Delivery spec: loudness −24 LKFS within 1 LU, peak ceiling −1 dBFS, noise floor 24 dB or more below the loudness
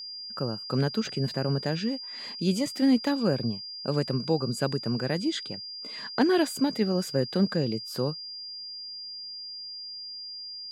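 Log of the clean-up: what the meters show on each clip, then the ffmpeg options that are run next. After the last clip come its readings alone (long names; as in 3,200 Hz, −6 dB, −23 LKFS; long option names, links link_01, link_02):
interfering tone 4,800 Hz; level of the tone −37 dBFS; integrated loudness −29.0 LKFS; sample peak −11.5 dBFS; target loudness −24.0 LKFS
→ -af "bandreject=frequency=4800:width=30"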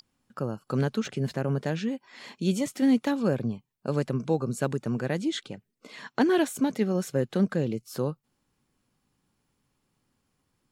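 interfering tone none found; integrated loudness −28.5 LKFS; sample peak −12.0 dBFS; target loudness −24.0 LKFS
→ -af "volume=4.5dB"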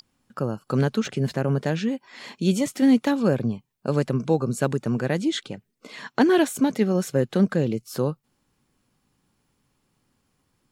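integrated loudness −24.0 LKFS; sample peak −7.5 dBFS; background noise floor −73 dBFS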